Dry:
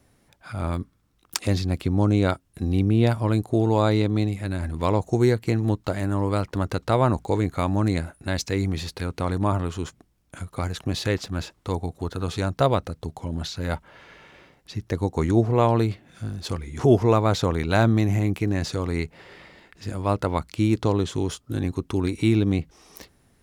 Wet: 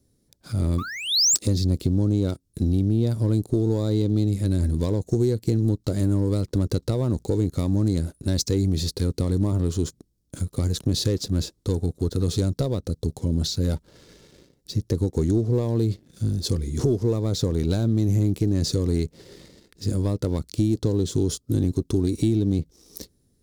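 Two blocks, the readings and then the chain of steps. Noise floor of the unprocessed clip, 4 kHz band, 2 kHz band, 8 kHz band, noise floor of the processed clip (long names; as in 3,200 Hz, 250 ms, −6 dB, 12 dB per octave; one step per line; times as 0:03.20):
−63 dBFS, +5.5 dB, −9.0 dB, +10.5 dB, −66 dBFS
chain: sound drawn into the spectrogram rise, 0:00.78–0:01.36, 1,100–8,100 Hz −20 dBFS
downward compressor 16 to 1, threshold −23 dBFS, peak gain reduction 13.5 dB
leveller curve on the samples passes 2
flat-topped bell 1,400 Hz −15.5 dB 2.5 octaves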